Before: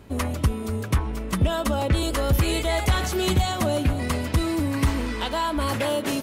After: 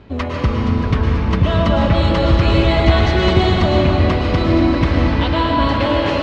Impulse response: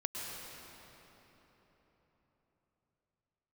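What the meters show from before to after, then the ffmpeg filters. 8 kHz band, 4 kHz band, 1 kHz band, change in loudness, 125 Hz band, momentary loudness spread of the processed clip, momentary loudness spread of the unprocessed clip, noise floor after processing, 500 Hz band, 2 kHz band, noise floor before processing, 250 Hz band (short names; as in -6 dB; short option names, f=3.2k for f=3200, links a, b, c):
under -10 dB, +6.5 dB, +8.5 dB, +9.0 dB, +9.5 dB, 4 LU, 4 LU, -22 dBFS, +9.0 dB, +8.0 dB, -32 dBFS, +9.5 dB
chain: -filter_complex "[0:a]lowpass=f=4.5k:w=0.5412,lowpass=f=4.5k:w=1.3066[a];[1:a]atrim=start_sample=2205[b];[a][b]afir=irnorm=-1:irlink=0,volume=6dB"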